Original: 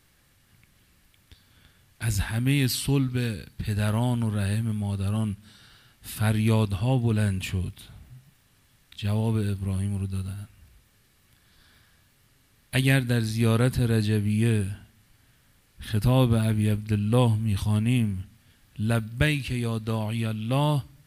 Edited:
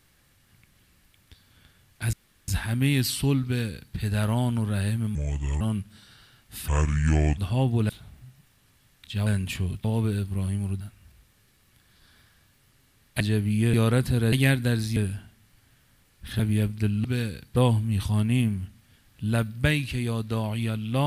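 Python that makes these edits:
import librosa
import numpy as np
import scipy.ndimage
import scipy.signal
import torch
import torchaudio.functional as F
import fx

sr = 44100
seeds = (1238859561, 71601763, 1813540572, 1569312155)

y = fx.edit(x, sr, fx.insert_room_tone(at_s=2.13, length_s=0.35),
    fx.duplicate(start_s=3.09, length_s=0.52, to_s=17.13),
    fx.speed_span(start_s=4.8, length_s=0.33, speed=0.72),
    fx.speed_span(start_s=6.2, length_s=0.48, speed=0.69),
    fx.move(start_s=7.2, length_s=0.58, to_s=9.15),
    fx.cut(start_s=10.11, length_s=0.26),
    fx.swap(start_s=12.77, length_s=0.64, other_s=14.0, other_length_s=0.53),
    fx.cut(start_s=15.96, length_s=0.52), tone=tone)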